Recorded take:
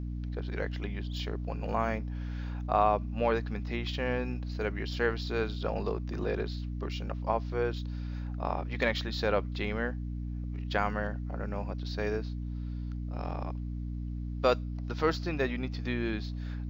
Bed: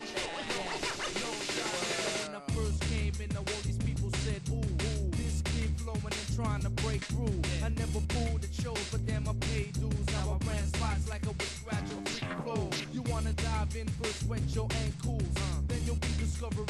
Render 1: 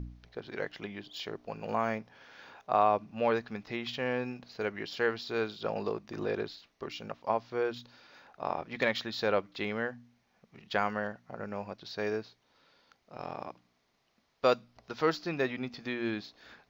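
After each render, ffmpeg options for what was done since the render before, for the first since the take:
-af "bandreject=f=60:t=h:w=4,bandreject=f=120:t=h:w=4,bandreject=f=180:t=h:w=4,bandreject=f=240:t=h:w=4,bandreject=f=300:t=h:w=4"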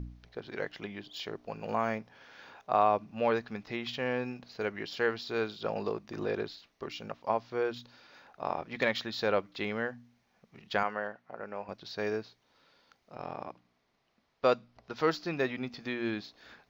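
-filter_complex "[0:a]asettb=1/sr,asplit=3[a][b][c];[a]atrim=end=10.834[d];[b]atrim=start=10.83:end=11.69,asetpts=PTS-STARTPTS,afade=t=in:d=0.004:c=qsin,afade=t=out:st=0.856:d=0.004:c=qsin,bass=f=250:g=-12,treble=f=4k:g=-12[e];[c]atrim=start=11.686[f];[d][e]acrossfade=d=0.004:c1=hsin:c2=qsin[g];[g][f]acrossfade=d=0.004:c1=qsin:c2=hsin,asettb=1/sr,asplit=3[h][i][j];[h]atrim=end=13.154[k];[i]atrim=start=13.15:end=14.96,asetpts=PTS-STARTPTS,afade=t=in:d=0.004:c=qsin,afade=t=out:st=1.806:d=0.004:c=qsin,lowpass=f=3.7k:p=1[l];[j]atrim=start=14.956[m];[k][l]acrossfade=d=0.004:c1=hsin:c2=qsin[n];[n][m]acrossfade=d=0.004:c1=qsin:c2=hsin"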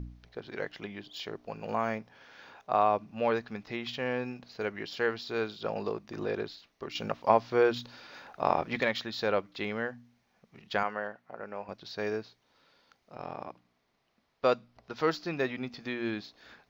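-filter_complex "[0:a]asettb=1/sr,asplit=3[a][b][c];[a]atrim=end=6.954[d];[b]atrim=start=6.95:end=8.8,asetpts=PTS-STARTPTS,afade=t=in:d=0.004:c=qsin,afade=t=out:st=1.846:d=0.004:c=qsin,acontrast=87[e];[c]atrim=start=8.796[f];[d][e]acrossfade=d=0.004:c1=hsin:c2=qsin[g];[g][f]acrossfade=d=0.004:c1=qsin:c2=hsin"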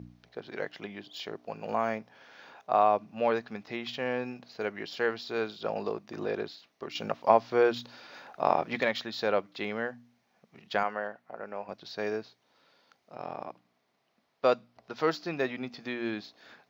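-af "highpass=130,equalizer=f=680:t=o:w=0.56:g=3"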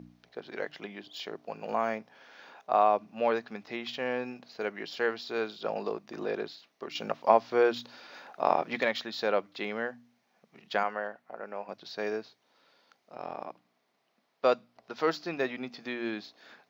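-af "equalizer=f=81:t=o:w=1.1:g=-13.5,bandreject=f=50:t=h:w=6,bandreject=f=100:t=h:w=6,bandreject=f=150:t=h:w=6"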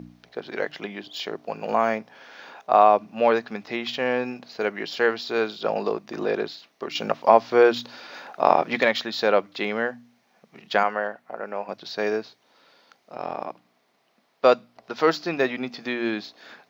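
-af "volume=8dB,alimiter=limit=-2dB:level=0:latency=1"

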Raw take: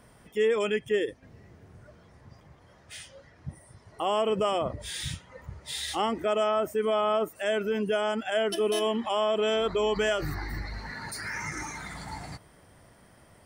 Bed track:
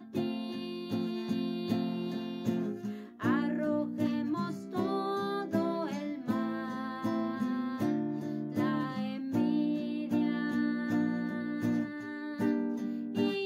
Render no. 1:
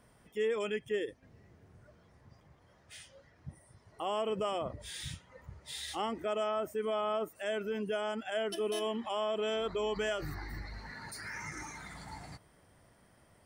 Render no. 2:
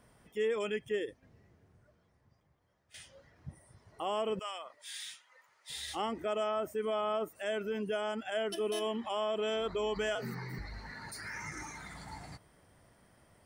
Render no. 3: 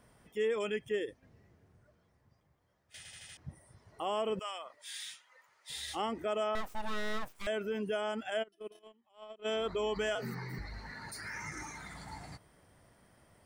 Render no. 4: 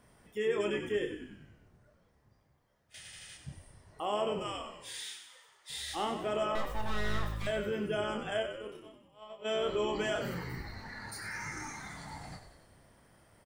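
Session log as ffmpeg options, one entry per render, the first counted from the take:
-af "volume=-7.5dB"
-filter_complex "[0:a]asettb=1/sr,asplit=3[a][b][c];[a]atrim=end=4.394[d];[b]atrim=start=4.39:end=5.7,asetpts=PTS-STARTPTS,afade=t=in:d=0.004:c=qsin,afade=t=out:st=1.306:d=0.004:c=qsin,highpass=1.2k[e];[c]atrim=start=5.696[f];[d][e]acrossfade=d=0.004:c1=hsin:c2=qsin[g];[g][f]acrossfade=d=0.004:c1=qsin:c2=hsin,asettb=1/sr,asplit=3[h][i][j];[h]atrim=end=10.154[k];[i]atrim=start=10.15:end=10.59,asetpts=PTS-STARTPTS,afade=t=in:d=0.004:c=qsin,afade=t=out:st=0.436:d=0.004:c=qsin,afreqshift=78[l];[j]atrim=start=10.586[m];[k][l]acrossfade=d=0.004:c1=hsin:c2=qsin[n];[n][m]acrossfade=d=0.004:c1=qsin:c2=hsin,asplit=2[o][p];[o]atrim=end=2.94,asetpts=PTS-STARTPTS,afade=t=out:st=0.91:d=2.03:c=qua:silence=0.237137[q];[p]atrim=start=2.94,asetpts=PTS-STARTPTS,afade=t=in:d=0.004:c=hsin:silence=0.237137[r];[q][r]concat=n=2:v=0:a=1"
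-filter_complex "[0:a]asettb=1/sr,asplit=3[a][b][c];[a]atrim=end=6.554[d];[b]atrim=start=6.55:end=7.47,asetpts=PTS-STARTPTS,afade=t=in:d=0.004:c=qsin,afade=t=out:st=0.916:d=0.004:c=qsin,aeval=exprs='abs(val(0))':c=same[e];[c]atrim=start=7.466[f];[d][e]acrossfade=d=0.004:c1=hsin:c2=qsin[g];[g][f]acrossfade=d=0.004:c1=qsin:c2=hsin,asplit=3[h][i][j];[h]afade=t=out:st=8.42:d=0.02[k];[i]agate=range=-34dB:threshold=-31dB:ratio=16:release=100:detection=peak,afade=t=in:st=8.42:d=0.02,afade=t=out:st=9.44:d=0.02[l];[j]afade=t=in:st=9.44:d=0.02[m];[k][l][m]amix=inputs=3:normalize=0,asplit=6[n][o][p][q][r][s];[n]atrim=end=3.052[t];[o]atrim=start=2.968:end=3.052[u];[p]atrim=start=2.968:end=3.052[v];[q]atrim=start=2.968:end=3.052[w];[r]atrim=start=2.968:end=3.052[x];[s]atrim=start=3.368[y];[t][u]acrossfade=d=0.004:c1=hsin:c2=hsin[z];[z][v]acrossfade=d=0.004:c1=hsin:c2=hsin[aa];[aa][w]acrossfade=d=0.004:c1=hsin:c2=hsin[ab];[ab][x]acrossfade=d=0.004:c1=hsin:c2=hsin[ac];[ac][y]acrossfade=d=0.004:c1=hsin:c2=hsin"
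-filter_complex "[0:a]asplit=2[a][b];[b]adelay=29,volume=-6dB[c];[a][c]amix=inputs=2:normalize=0,asplit=2[d][e];[e]asplit=7[f][g][h][i][j][k][l];[f]adelay=94,afreqshift=-53,volume=-8.5dB[m];[g]adelay=188,afreqshift=-106,volume=-13.4dB[n];[h]adelay=282,afreqshift=-159,volume=-18.3dB[o];[i]adelay=376,afreqshift=-212,volume=-23.1dB[p];[j]adelay=470,afreqshift=-265,volume=-28dB[q];[k]adelay=564,afreqshift=-318,volume=-32.9dB[r];[l]adelay=658,afreqshift=-371,volume=-37.8dB[s];[m][n][o][p][q][r][s]amix=inputs=7:normalize=0[t];[d][t]amix=inputs=2:normalize=0"

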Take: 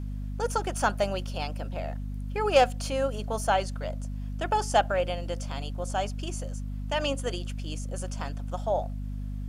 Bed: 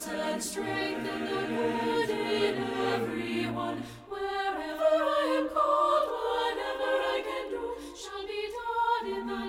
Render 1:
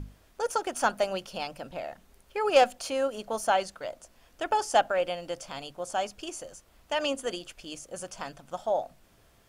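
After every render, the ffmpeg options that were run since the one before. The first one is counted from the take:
-af "bandreject=f=50:t=h:w=6,bandreject=f=100:t=h:w=6,bandreject=f=150:t=h:w=6,bandreject=f=200:t=h:w=6,bandreject=f=250:t=h:w=6"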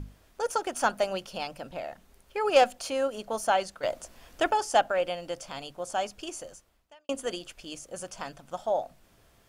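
-filter_complex "[0:a]asettb=1/sr,asplit=3[a][b][c];[a]atrim=end=3.834[d];[b]atrim=start=3.83:end=4.51,asetpts=PTS-STARTPTS,afade=t=in:d=0.004:c=qsin,afade=t=out:st=0.676:d=0.004:c=qsin,acontrast=84[e];[c]atrim=start=4.506[f];[d][e]acrossfade=d=0.004:c1=hsin:c2=qsin[g];[g][f]acrossfade=d=0.004:c1=qsin:c2=hsin,asplit=2[h][i];[h]atrim=end=7.09,asetpts=PTS-STARTPTS,afade=t=out:st=6.5:d=0.59:c=qua[j];[i]atrim=start=7.09,asetpts=PTS-STARTPTS,afade=t=in:d=0.004:c=hsin[k];[j][k]concat=n=2:v=0:a=1"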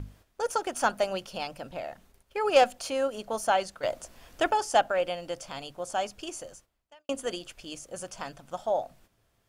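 -af "agate=range=-10dB:threshold=-56dB:ratio=16:detection=peak,equalizer=f=110:w=4.9:g=5.5"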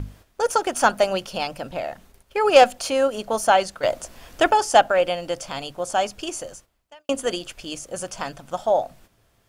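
-af "volume=8dB,alimiter=limit=-1dB:level=0:latency=1"

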